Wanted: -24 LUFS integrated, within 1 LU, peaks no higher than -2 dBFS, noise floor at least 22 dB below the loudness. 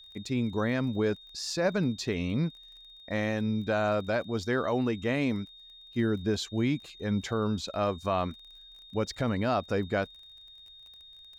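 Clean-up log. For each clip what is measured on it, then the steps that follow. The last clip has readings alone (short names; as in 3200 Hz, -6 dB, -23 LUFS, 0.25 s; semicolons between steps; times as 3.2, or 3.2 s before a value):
ticks 27/s; steady tone 3700 Hz; tone level -49 dBFS; loudness -30.5 LUFS; peak -17.5 dBFS; loudness target -24.0 LUFS
-> de-click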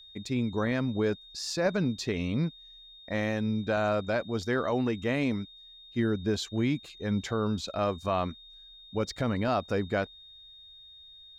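ticks 0/s; steady tone 3700 Hz; tone level -49 dBFS
-> notch 3700 Hz, Q 30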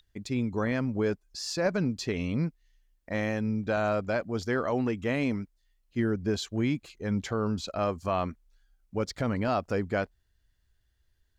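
steady tone none; loudness -30.5 LUFS; peak -16.0 dBFS; loudness target -24.0 LUFS
-> gain +6.5 dB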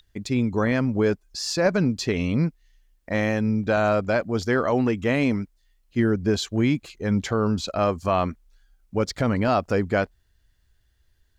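loudness -24.0 LUFS; peak -9.5 dBFS; noise floor -65 dBFS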